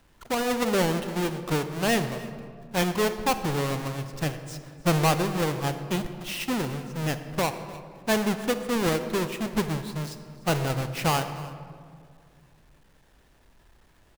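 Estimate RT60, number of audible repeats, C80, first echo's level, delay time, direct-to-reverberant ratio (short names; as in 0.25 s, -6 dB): 2.1 s, 1, 10.5 dB, -19.5 dB, 0.301 s, 9.0 dB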